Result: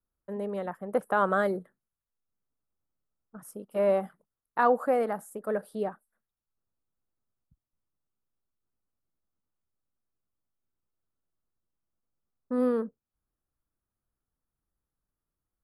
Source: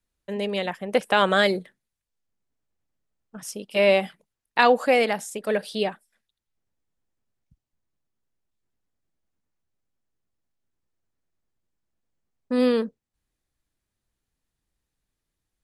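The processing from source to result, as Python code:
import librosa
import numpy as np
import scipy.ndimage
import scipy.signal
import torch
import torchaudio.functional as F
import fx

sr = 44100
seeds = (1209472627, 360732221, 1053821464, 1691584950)

y = fx.curve_eq(x, sr, hz=(920.0, 1300.0, 2500.0, 5700.0, 11000.0), db=(0, 4, -20, -20, -1))
y = y * librosa.db_to_amplitude(-5.5)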